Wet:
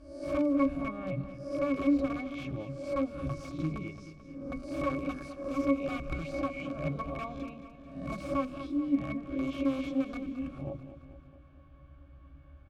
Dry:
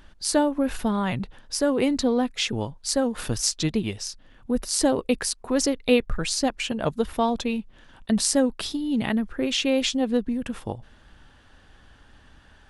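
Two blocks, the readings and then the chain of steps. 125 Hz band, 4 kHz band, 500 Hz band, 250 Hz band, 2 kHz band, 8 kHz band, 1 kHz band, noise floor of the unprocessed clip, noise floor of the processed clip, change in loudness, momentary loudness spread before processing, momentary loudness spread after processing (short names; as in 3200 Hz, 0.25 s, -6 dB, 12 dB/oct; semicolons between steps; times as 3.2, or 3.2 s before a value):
-4.5 dB, -23.5 dB, -9.5 dB, -7.0 dB, -9.5 dB, under -30 dB, -8.5 dB, -54 dBFS, -54 dBFS, -8.5 dB, 9 LU, 14 LU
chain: spectral swells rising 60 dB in 0.56 s; notches 50/100/150/200/250/300/350/400/450 Hz; in parallel at -1.5 dB: compressor 8:1, threshold -35 dBFS, peak gain reduction 20 dB; on the sum: wrapped overs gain 13.5 dB; octave resonator C#, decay 0.12 s; on a send: feedback echo 0.219 s, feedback 57%, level -12 dB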